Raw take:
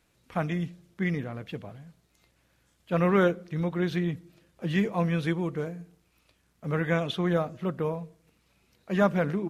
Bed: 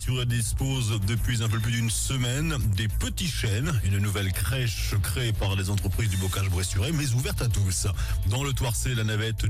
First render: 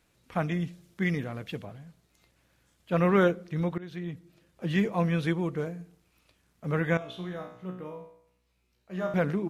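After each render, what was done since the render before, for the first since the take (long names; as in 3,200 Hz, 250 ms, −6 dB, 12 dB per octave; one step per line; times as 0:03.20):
0:00.67–0:01.65: high-shelf EQ 3,100 Hz +6 dB
0:03.78–0:04.96: fade in equal-power, from −19.5 dB
0:06.97–0:09.14: tuned comb filter 61 Hz, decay 0.65 s, mix 90%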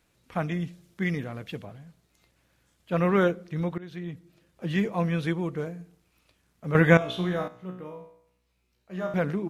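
0:06.75–0:07.48: clip gain +9 dB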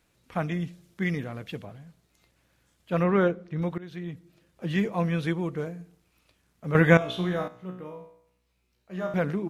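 0:03.03–0:03.62: low-pass filter 2,300 Hz 6 dB per octave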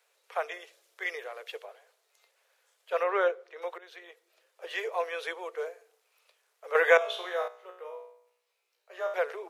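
Butterworth high-pass 420 Hz 72 dB per octave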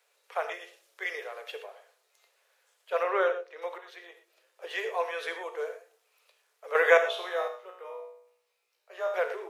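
reverb whose tail is shaped and stops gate 140 ms flat, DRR 6.5 dB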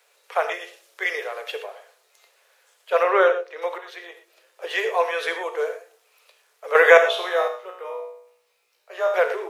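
level +9 dB
brickwall limiter −1 dBFS, peak gain reduction 2 dB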